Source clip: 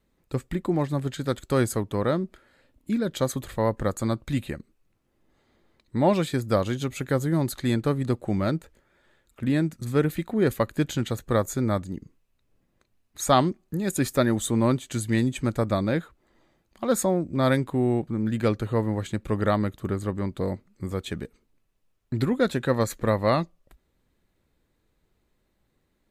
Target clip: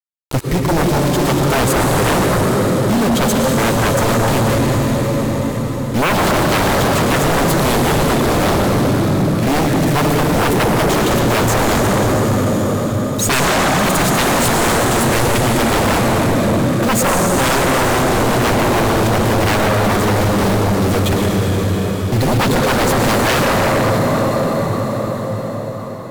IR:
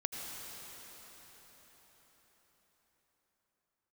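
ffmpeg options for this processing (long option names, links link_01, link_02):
-filter_complex "[0:a]lowshelf=frequency=140:gain=3.5,acrusher=bits=5:mix=0:aa=0.000001[link_01];[1:a]atrim=start_sample=2205,asetrate=34398,aresample=44100[link_02];[link_01][link_02]afir=irnorm=-1:irlink=0,aeval=exprs='0.562*sin(PI/2*6.31*val(0)/0.562)':channel_layout=same,volume=-6dB"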